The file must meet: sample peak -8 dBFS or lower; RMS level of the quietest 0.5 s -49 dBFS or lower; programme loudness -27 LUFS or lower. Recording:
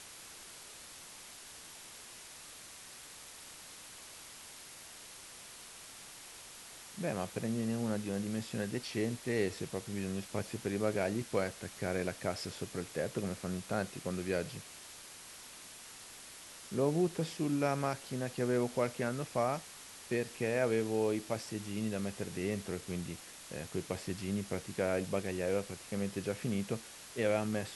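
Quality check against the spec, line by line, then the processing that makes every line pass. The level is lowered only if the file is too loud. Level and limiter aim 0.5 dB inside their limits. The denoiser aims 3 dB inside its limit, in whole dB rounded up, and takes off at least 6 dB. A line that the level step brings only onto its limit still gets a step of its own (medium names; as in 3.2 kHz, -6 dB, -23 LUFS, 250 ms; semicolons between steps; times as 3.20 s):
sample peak -18.5 dBFS: pass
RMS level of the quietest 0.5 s -51 dBFS: pass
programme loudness -36.0 LUFS: pass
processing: none needed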